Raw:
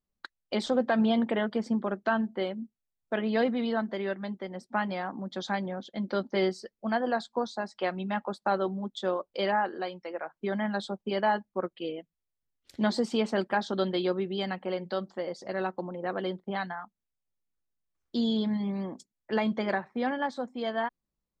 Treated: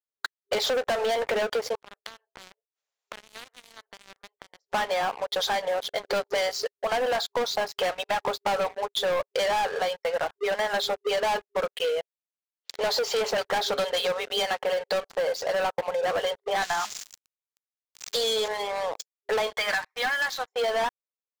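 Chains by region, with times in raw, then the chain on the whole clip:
0:01.75–0:04.73: gate with flip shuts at −34 dBFS, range −31 dB + every bin compressed towards the loudest bin 4 to 1
0:16.62–0:18.48: spike at every zero crossing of −32 dBFS + high-pass filter 340 Hz 24 dB per octave + high-shelf EQ 6,400 Hz +5.5 dB
0:19.56–0:20.53: high-pass filter 1,400 Hz + comb filter 6.5 ms, depth 56%
whole clip: brick-wall band-pass 400–7,600 Hz; leveller curve on the samples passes 5; downward compressor, threshold −23 dBFS; level −1 dB

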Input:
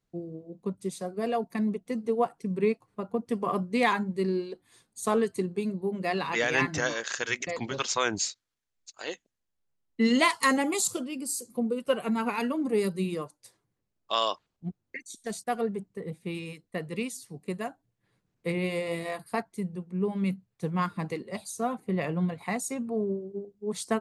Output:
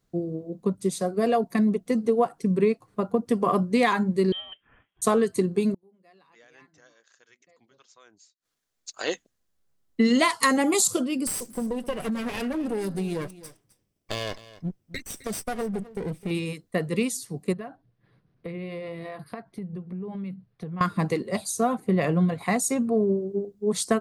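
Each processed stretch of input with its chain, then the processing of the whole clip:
0:04.32–0:05.02: high-pass filter 1,400 Hz 6 dB per octave + voice inversion scrambler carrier 3,500 Hz
0:05.74–0:09.00: low-shelf EQ 110 Hz −10 dB + gate with flip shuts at −31 dBFS, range −36 dB
0:11.27–0:16.31: lower of the sound and its delayed copy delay 0.36 ms + downward compressor 5 to 1, threshold −34 dBFS + single-tap delay 260 ms −17.5 dB
0:17.53–0:20.81: parametric band 140 Hz +6 dB 0.41 octaves + downward compressor 8 to 1, threshold −40 dBFS + moving average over 6 samples
whole clip: parametric band 2,500 Hz −3.5 dB 0.75 octaves; notch filter 890 Hz, Q 12; downward compressor 3 to 1, threshold −27 dBFS; level +8.5 dB

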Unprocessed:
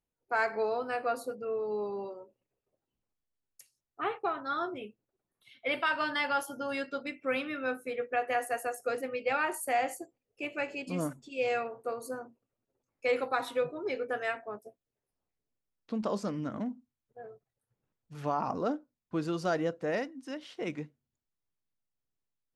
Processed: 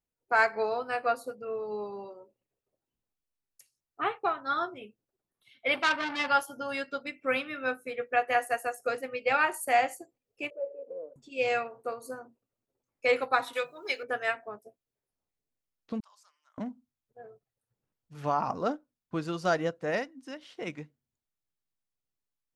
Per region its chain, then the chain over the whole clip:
0:05.75–0:06.28: parametric band 280 Hz +9.5 dB 1.6 octaves + saturating transformer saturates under 2,200 Hz
0:10.50–0:11.16: variable-slope delta modulation 32 kbit/s + leveller curve on the samples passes 3 + flat-topped band-pass 500 Hz, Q 4.4
0:13.53–0:14.03: spectral tilt +4.5 dB per octave + mains-hum notches 50/100/150/200/250/300/350/400 Hz
0:16.00–0:16.58: four-pole ladder high-pass 820 Hz, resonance 50% + first difference
whole clip: dynamic equaliser 320 Hz, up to −5 dB, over −42 dBFS, Q 0.78; expander for the loud parts 1.5 to 1, over −46 dBFS; level +7 dB

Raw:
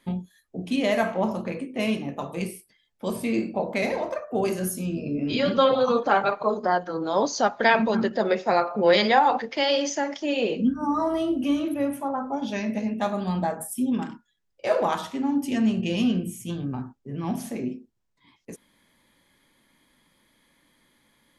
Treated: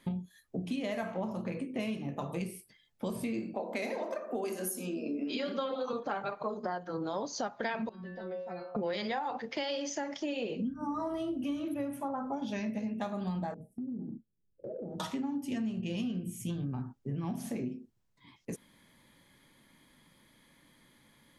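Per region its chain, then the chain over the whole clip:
0:03.53–0:05.93: Butterworth high-pass 230 Hz + high-shelf EQ 8,500 Hz +6.5 dB + feedback echo with a low-pass in the loop 85 ms, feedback 61%, low-pass 1,200 Hz, level −12.5 dB
0:07.89–0:08.75: low-pass filter 3,000 Hz + stiff-string resonator 180 Hz, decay 0.4 s, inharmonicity 0.002 + downward compressor 2.5 to 1, threshold −40 dBFS
0:13.54–0:15.00: inverse Chebyshev low-pass filter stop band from 980 Hz + downward compressor 5 to 1, threshold −39 dBFS
whole clip: parametric band 130 Hz +6 dB 1.3 octaves; downward compressor 6 to 1, threshold −33 dBFS

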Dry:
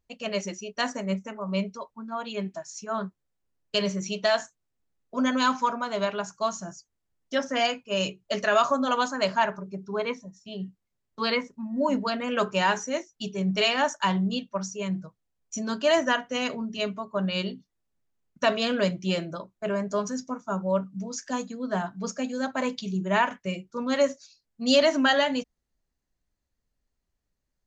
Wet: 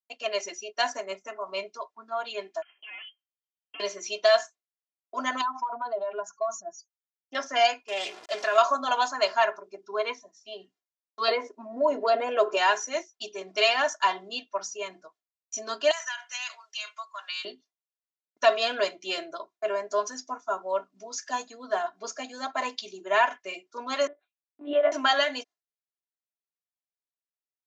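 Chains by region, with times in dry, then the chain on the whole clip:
0:02.62–0:03.80: downward compressor 2 to 1, threshold −35 dBFS + tube saturation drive 40 dB, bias 0.5 + voice inversion scrambler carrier 3,200 Hz
0:05.41–0:07.35: expanding power law on the bin magnitudes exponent 2 + downward compressor 10 to 1, threshold −27 dBFS + highs frequency-modulated by the lows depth 0.19 ms
0:07.88–0:08.58: converter with a step at zero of −35 dBFS + downward compressor 1.5 to 1, threshold −34 dBFS + highs frequency-modulated by the lows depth 0.23 ms
0:11.28–0:12.57: parametric band 460 Hz +15 dB 1.9 octaves + downward compressor 2.5 to 1, threshold −22 dBFS
0:15.91–0:17.45: high-pass filter 1,100 Hz 24 dB per octave + downward compressor, threshold −33 dBFS + high-shelf EQ 5,100 Hz +11 dB
0:24.07–0:24.92: low-pass filter 1,300 Hz + one-pitch LPC vocoder at 8 kHz 290 Hz
whole clip: noise gate with hold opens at −48 dBFS; Chebyshev band-pass filter 580–6,000 Hz, order 2; comb filter 2.9 ms, depth 77%

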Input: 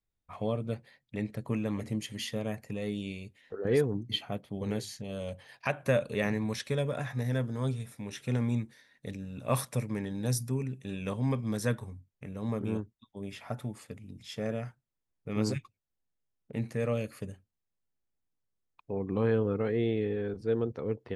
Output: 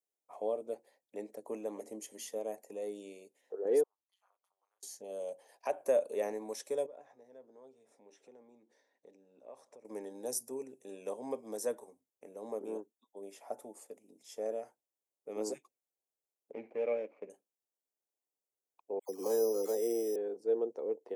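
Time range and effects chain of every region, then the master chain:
0:03.83–0:04.83: downward compressor 16 to 1, threshold −44 dBFS + four-pole ladder high-pass 1,100 Hz, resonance 75% + amplitude modulation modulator 190 Hz, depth 90%
0:06.86–0:09.85: downward compressor 3 to 1, threshold −49 dBFS + high-frequency loss of the air 130 metres
0:16.52–0:17.30: running median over 25 samples + low-pass with resonance 2,300 Hz, resonance Q 9.7
0:18.99–0:20.16: all-pass dispersion lows, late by 100 ms, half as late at 1,500 Hz + bad sample-rate conversion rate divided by 8×, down none, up hold
whole clip: high-pass filter 370 Hz 24 dB per octave; flat-topped bell 2,300 Hz −15.5 dB 2.3 octaves

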